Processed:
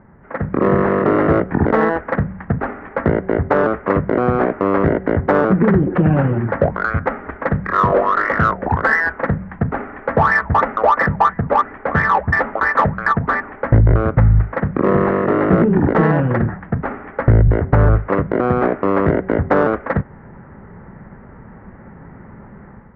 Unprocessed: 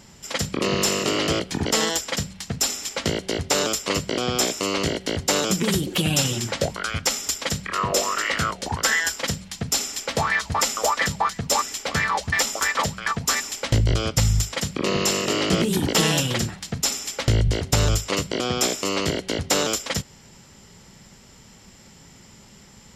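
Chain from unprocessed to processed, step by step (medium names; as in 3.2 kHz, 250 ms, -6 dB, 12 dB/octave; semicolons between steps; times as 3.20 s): steep low-pass 1.8 kHz 48 dB/octave; level rider gain up to 9 dB; in parallel at -8 dB: saturation -16 dBFS, distortion -9 dB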